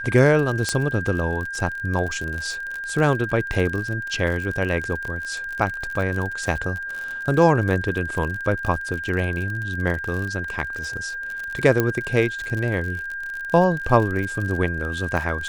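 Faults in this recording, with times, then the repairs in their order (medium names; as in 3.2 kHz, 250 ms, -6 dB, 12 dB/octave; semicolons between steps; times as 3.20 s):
crackle 46 per s -27 dBFS
whine 1.6 kHz -28 dBFS
0.69 s: pop -8 dBFS
11.80 s: pop -6 dBFS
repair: de-click; band-stop 1.6 kHz, Q 30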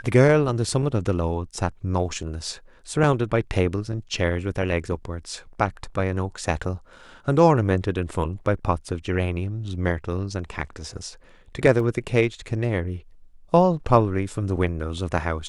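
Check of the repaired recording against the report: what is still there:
0.69 s: pop
11.80 s: pop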